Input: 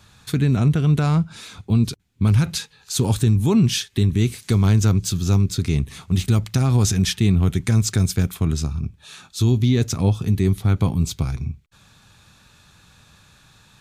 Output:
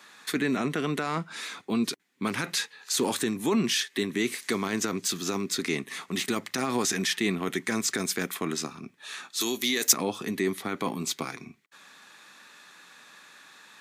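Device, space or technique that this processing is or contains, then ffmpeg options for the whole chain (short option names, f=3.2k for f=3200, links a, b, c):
laptop speaker: -filter_complex "[0:a]highpass=f=260:w=0.5412,highpass=f=260:w=1.3066,equalizer=f=1.1k:t=o:w=0.34:g=4,equalizer=f=1.9k:t=o:w=0.46:g=10,alimiter=limit=-17dB:level=0:latency=1:release=14,asplit=3[a][b][c];[a]afade=t=out:st=9.4:d=0.02[d];[b]aemphasis=mode=production:type=riaa,afade=t=in:st=9.4:d=0.02,afade=t=out:st=9.92:d=0.02[e];[c]afade=t=in:st=9.92:d=0.02[f];[d][e][f]amix=inputs=3:normalize=0"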